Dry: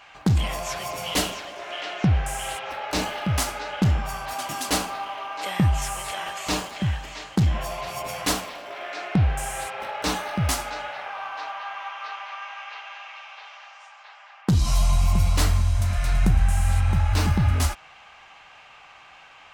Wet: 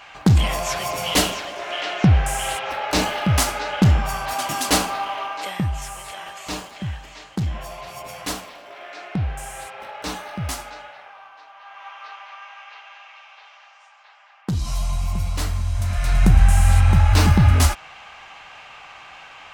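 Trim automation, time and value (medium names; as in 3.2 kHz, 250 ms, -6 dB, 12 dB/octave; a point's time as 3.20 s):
5.24 s +5.5 dB
5.66 s -4 dB
10.60 s -4 dB
11.47 s -13.5 dB
11.89 s -4 dB
15.51 s -4 dB
16.40 s +6.5 dB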